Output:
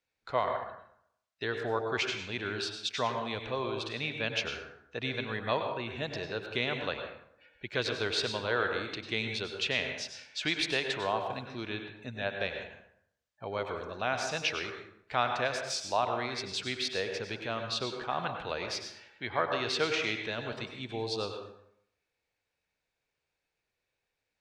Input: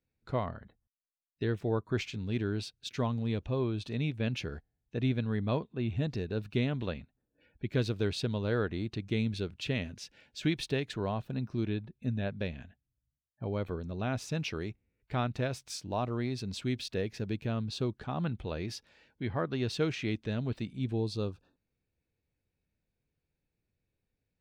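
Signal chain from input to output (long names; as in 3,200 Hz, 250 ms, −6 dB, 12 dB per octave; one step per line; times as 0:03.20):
three-way crossover with the lows and the highs turned down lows −19 dB, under 560 Hz, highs −17 dB, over 7,700 Hz
dense smooth reverb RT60 0.72 s, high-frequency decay 0.6×, pre-delay 85 ms, DRR 4.5 dB
level +7.5 dB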